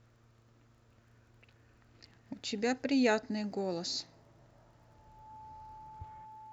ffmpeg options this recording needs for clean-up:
-af "adeclick=t=4,bandreject=f=115.4:t=h:w=4,bandreject=f=230.8:t=h:w=4,bandreject=f=346.2:t=h:w=4,bandreject=f=461.6:t=h:w=4,bandreject=f=870:w=30"

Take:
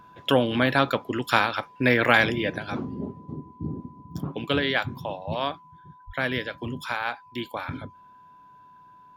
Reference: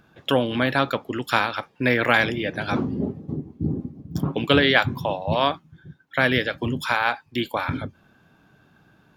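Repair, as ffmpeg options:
-filter_complex "[0:a]bandreject=f=1000:w=30,asplit=3[s0][s1][s2];[s0]afade=t=out:st=6.06:d=0.02[s3];[s1]highpass=f=140:w=0.5412,highpass=f=140:w=1.3066,afade=t=in:st=6.06:d=0.02,afade=t=out:st=6.18:d=0.02[s4];[s2]afade=t=in:st=6.18:d=0.02[s5];[s3][s4][s5]amix=inputs=3:normalize=0,asetnsamples=n=441:p=0,asendcmd='2.58 volume volume 7dB',volume=1"

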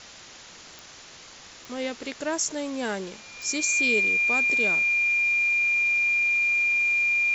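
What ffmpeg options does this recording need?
-af "adeclick=t=4,bandreject=f=2400:w=30,afwtdn=0.0079"

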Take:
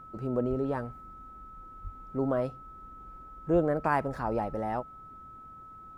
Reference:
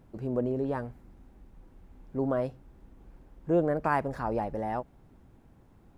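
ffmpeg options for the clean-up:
-filter_complex "[0:a]bandreject=f=1300:w=30,asplit=3[s0][s1][s2];[s0]afade=t=out:st=0.49:d=0.02[s3];[s1]highpass=f=140:w=0.5412,highpass=f=140:w=1.3066,afade=t=in:st=0.49:d=0.02,afade=t=out:st=0.61:d=0.02[s4];[s2]afade=t=in:st=0.61:d=0.02[s5];[s3][s4][s5]amix=inputs=3:normalize=0,asplit=3[s6][s7][s8];[s6]afade=t=out:st=1.83:d=0.02[s9];[s7]highpass=f=140:w=0.5412,highpass=f=140:w=1.3066,afade=t=in:st=1.83:d=0.02,afade=t=out:st=1.95:d=0.02[s10];[s8]afade=t=in:st=1.95:d=0.02[s11];[s9][s10][s11]amix=inputs=3:normalize=0,asplit=3[s12][s13][s14];[s12]afade=t=out:st=3.52:d=0.02[s15];[s13]highpass=f=140:w=0.5412,highpass=f=140:w=1.3066,afade=t=in:st=3.52:d=0.02,afade=t=out:st=3.64:d=0.02[s16];[s14]afade=t=in:st=3.64:d=0.02[s17];[s15][s16][s17]amix=inputs=3:normalize=0"

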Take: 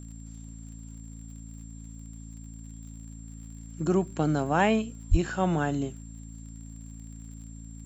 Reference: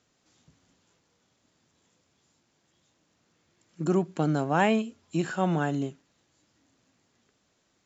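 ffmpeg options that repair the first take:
-filter_complex "[0:a]adeclick=t=4,bandreject=f=55.5:t=h:w=4,bandreject=f=111:t=h:w=4,bandreject=f=166.5:t=h:w=4,bandreject=f=222:t=h:w=4,bandreject=f=277.5:t=h:w=4,bandreject=f=7400:w=30,asplit=3[s0][s1][s2];[s0]afade=t=out:st=5.1:d=0.02[s3];[s1]highpass=f=140:w=0.5412,highpass=f=140:w=1.3066,afade=t=in:st=5.1:d=0.02,afade=t=out:st=5.22:d=0.02[s4];[s2]afade=t=in:st=5.22:d=0.02[s5];[s3][s4][s5]amix=inputs=3:normalize=0"

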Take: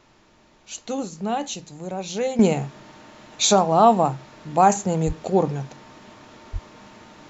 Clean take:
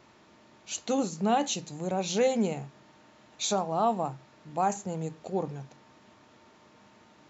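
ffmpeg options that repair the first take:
-filter_complex "[0:a]asplit=3[s0][s1][s2];[s0]afade=t=out:st=5.06:d=0.02[s3];[s1]highpass=f=140:w=0.5412,highpass=f=140:w=1.3066,afade=t=in:st=5.06:d=0.02,afade=t=out:st=5.18:d=0.02[s4];[s2]afade=t=in:st=5.18:d=0.02[s5];[s3][s4][s5]amix=inputs=3:normalize=0,asplit=3[s6][s7][s8];[s6]afade=t=out:st=6.52:d=0.02[s9];[s7]highpass=f=140:w=0.5412,highpass=f=140:w=1.3066,afade=t=in:st=6.52:d=0.02,afade=t=out:st=6.64:d=0.02[s10];[s8]afade=t=in:st=6.64:d=0.02[s11];[s9][s10][s11]amix=inputs=3:normalize=0,agate=range=0.0891:threshold=0.00708,asetnsamples=n=441:p=0,asendcmd='2.39 volume volume -11.5dB',volume=1"

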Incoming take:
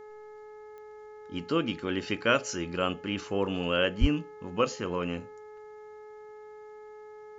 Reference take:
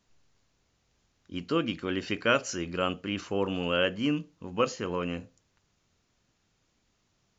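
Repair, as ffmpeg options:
-filter_complex "[0:a]adeclick=t=4,bandreject=f=425.2:t=h:w=4,bandreject=f=850.4:t=h:w=4,bandreject=f=1275.6:t=h:w=4,bandreject=f=1700.8:t=h:w=4,bandreject=f=2126:t=h:w=4,asplit=3[s0][s1][s2];[s0]afade=t=out:st=4:d=0.02[s3];[s1]highpass=f=140:w=0.5412,highpass=f=140:w=1.3066,afade=t=in:st=4:d=0.02,afade=t=out:st=4.12:d=0.02[s4];[s2]afade=t=in:st=4.12:d=0.02[s5];[s3][s4][s5]amix=inputs=3:normalize=0"

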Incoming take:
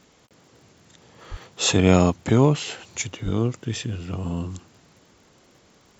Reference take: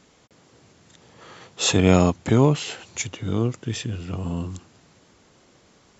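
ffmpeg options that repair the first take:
-filter_complex "[0:a]adeclick=t=4,asplit=3[s0][s1][s2];[s0]afade=t=out:st=1.3:d=0.02[s3];[s1]highpass=f=140:w=0.5412,highpass=f=140:w=1.3066,afade=t=in:st=1.3:d=0.02,afade=t=out:st=1.42:d=0.02[s4];[s2]afade=t=in:st=1.42:d=0.02[s5];[s3][s4][s5]amix=inputs=3:normalize=0,asplit=3[s6][s7][s8];[s6]afade=t=out:st=3.24:d=0.02[s9];[s7]highpass=f=140:w=0.5412,highpass=f=140:w=1.3066,afade=t=in:st=3.24:d=0.02,afade=t=out:st=3.36:d=0.02[s10];[s8]afade=t=in:st=3.36:d=0.02[s11];[s9][s10][s11]amix=inputs=3:normalize=0"

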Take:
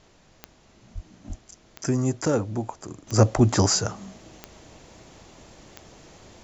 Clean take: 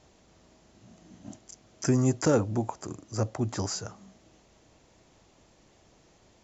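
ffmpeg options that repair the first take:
-filter_complex "[0:a]adeclick=t=4,asplit=3[s0][s1][s2];[s0]afade=t=out:st=0.94:d=0.02[s3];[s1]highpass=f=140:w=0.5412,highpass=f=140:w=1.3066,afade=t=in:st=0.94:d=0.02,afade=t=out:st=1.06:d=0.02[s4];[s2]afade=t=in:st=1.06:d=0.02[s5];[s3][s4][s5]amix=inputs=3:normalize=0,asplit=3[s6][s7][s8];[s6]afade=t=out:st=1.28:d=0.02[s9];[s7]highpass=f=140:w=0.5412,highpass=f=140:w=1.3066,afade=t=in:st=1.28:d=0.02,afade=t=out:st=1.4:d=0.02[s10];[s8]afade=t=in:st=1.4:d=0.02[s11];[s9][s10][s11]amix=inputs=3:normalize=0,asplit=3[s12][s13][s14];[s12]afade=t=out:st=3.35:d=0.02[s15];[s13]highpass=f=140:w=0.5412,highpass=f=140:w=1.3066,afade=t=in:st=3.35:d=0.02,afade=t=out:st=3.47:d=0.02[s16];[s14]afade=t=in:st=3.47:d=0.02[s17];[s15][s16][s17]amix=inputs=3:normalize=0,agate=range=0.0891:threshold=0.00398,asetnsamples=n=441:p=0,asendcmd='3.07 volume volume -11.5dB',volume=1"

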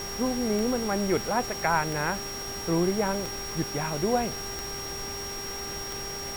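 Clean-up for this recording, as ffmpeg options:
-af "adeclick=t=4,bandreject=f=398:t=h:w=4,bandreject=f=796:t=h:w=4,bandreject=f=1194:t=h:w=4,bandreject=f=1592:t=h:w=4,bandreject=f=1990:t=h:w=4,bandreject=f=5600:w=30,afftdn=nr=30:nf=-35"

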